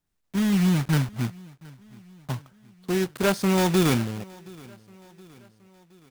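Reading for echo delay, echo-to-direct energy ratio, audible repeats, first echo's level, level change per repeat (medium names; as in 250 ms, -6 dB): 721 ms, -22.0 dB, 3, -23.5 dB, -5.5 dB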